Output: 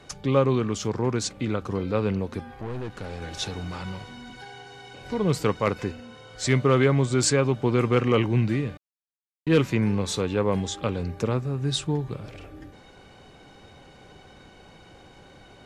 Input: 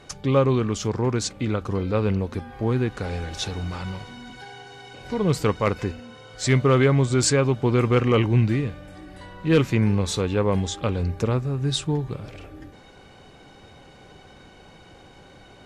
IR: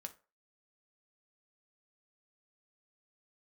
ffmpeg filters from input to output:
-filter_complex "[0:a]acrossover=split=100|1200[s0][s1][s2];[s0]acompressor=threshold=0.00794:ratio=6[s3];[s3][s1][s2]amix=inputs=3:normalize=0,asettb=1/sr,asplit=3[s4][s5][s6];[s4]atrim=end=2.544[s7];[s5]atrim=start=2.54:end=3.22,asetpts=PTS-STARTPTS,afade=t=in:d=0.004:c=qsin,afade=t=out:st=0.676:d=0.004:c=qsin,aeval=exprs='(tanh(25.1*val(0)+0.5)-tanh(0.5))/25.1':c=same[s8];[s6]atrim=start=3.216[s9];[s7][s8]acrossfade=d=0.004:c1=hsin:c2=qsin[s10];[s10][s9]acrossfade=d=0.004:c1=qsin:c2=hsin,asettb=1/sr,asplit=3[s11][s12][s13];[s11]atrim=end=8.774[s14];[s12]atrim=start=8.77:end=9.47,asetpts=PTS-STARTPTS,afade=t=in:d=0.004:c=qsin,afade=t=out:st=0.696:d=0.004:c=qsin,acrusher=bits=2:mix=0:aa=0.5[s15];[s13]atrim=start=9.466[s16];[s14][s15]acrossfade=d=0.004:c1=hsin:c2=qsin[s17];[s17][s16]acrossfade=d=0.004:c1=qsin:c2=hsin,volume=0.841"

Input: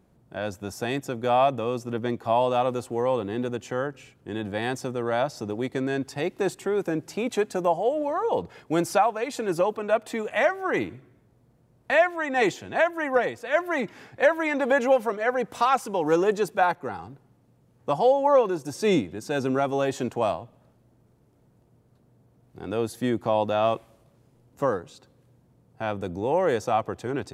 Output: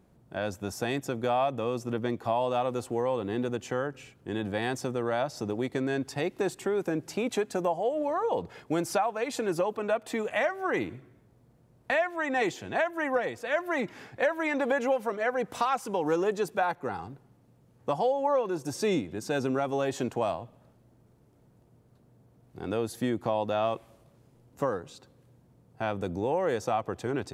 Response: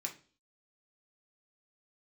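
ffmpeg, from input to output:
-af "acompressor=threshold=0.0501:ratio=2.5"

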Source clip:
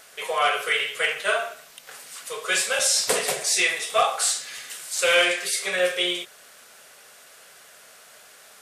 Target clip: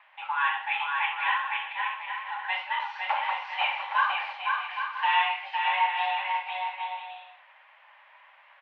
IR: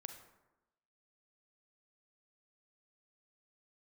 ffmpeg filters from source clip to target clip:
-filter_complex "[0:a]acrusher=bits=7:mix=0:aa=0.5,equalizer=f=2000:w=0.32:g=-5.5,highpass=f=180:t=q:w=0.5412,highpass=f=180:t=q:w=1.307,lowpass=f=2500:t=q:w=0.5176,lowpass=f=2500:t=q:w=0.7071,lowpass=f=2500:t=q:w=1.932,afreqshift=380,asplit=2[s0][s1];[s1]aecho=0:1:510|816|999.6|1110|1176:0.631|0.398|0.251|0.158|0.1[s2];[s0][s2]amix=inputs=2:normalize=0" -ar 48000 -c:a libopus -b:a 256k

